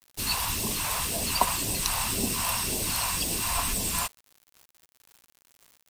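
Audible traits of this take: phasing stages 2, 1.9 Hz, lowest notch 310–1200 Hz; a quantiser's noise floor 8-bit, dither none

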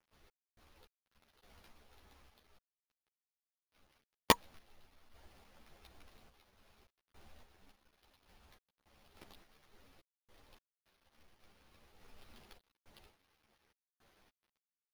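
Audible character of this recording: aliases and images of a low sample rate 7800 Hz, jitter 0%; random-step tremolo, depth 100%; a quantiser's noise floor 12-bit, dither none; a shimmering, thickened sound

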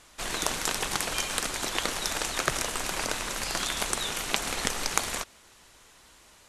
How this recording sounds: noise floor -56 dBFS; spectral tilt -2.0 dB/oct

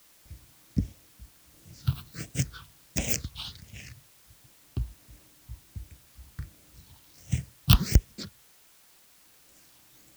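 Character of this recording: phasing stages 6, 1.4 Hz, lowest notch 510–1200 Hz; tremolo saw down 0.65 Hz, depth 50%; a quantiser's noise floor 10-bit, dither triangular

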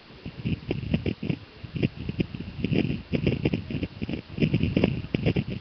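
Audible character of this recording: a buzz of ramps at a fixed pitch in blocks of 16 samples; random-step tremolo; a quantiser's noise floor 8-bit, dither triangular; Nellymoser

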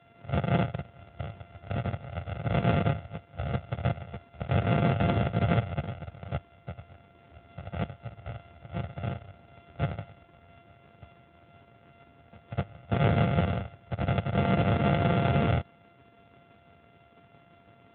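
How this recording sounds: a buzz of ramps at a fixed pitch in blocks of 64 samples; tremolo saw down 6 Hz, depth 30%; AMR-NB

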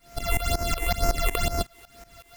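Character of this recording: a buzz of ramps at a fixed pitch in blocks of 64 samples; phasing stages 8, 2.1 Hz, lowest notch 170–3500 Hz; a quantiser's noise floor 10-bit, dither none; tremolo saw up 5.4 Hz, depth 90%

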